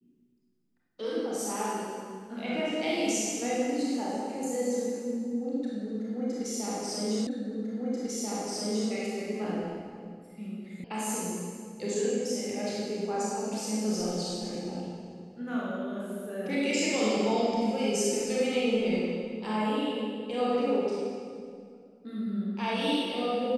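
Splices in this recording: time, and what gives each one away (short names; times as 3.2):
7.27 repeat of the last 1.64 s
10.84 sound cut off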